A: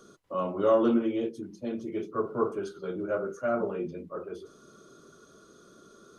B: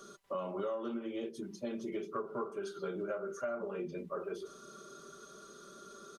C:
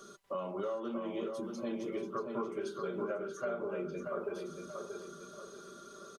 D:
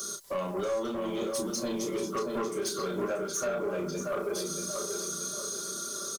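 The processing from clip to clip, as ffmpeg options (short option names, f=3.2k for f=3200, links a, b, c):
-af "lowshelf=f=410:g=-9,aecho=1:1:5.1:0.53,acompressor=threshold=-38dB:ratio=12,volume=3.5dB"
-filter_complex "[0:a]asplit=2[a][b];[b]adelay=633,lowpass=f=3.5k:p=1,volume=-5dB,asplit=2[c][d];[d]adelay=633,lowpass=f=3.5k:p=1,volume=0.41,asplit=2[e][f];[f]adelay=633,lowpass=f=3.5k:p=1,volume=0.41,asplit=2[g][h];[h]adelay=633,lowpass=f=3.5k:p=1,volume=0.41,asplit=2[i][j];[j]adelay=633,lowpass=f=3.5k:p=1,volume=0.41[k];[a][c][e][g][i][k]amix=inputs=6:normalize=0"
-filter_complex "[0:a]aexciter=amount=7.4:drive=3.1:freq=3.9k,asoftclip=type=tanh:threshold=-34dB,asplit=2[a][b];[b]adelay=32,volume=-6.5dB[c];[a][c]amix=inputs=2:normalize=0,volume=7.5dB"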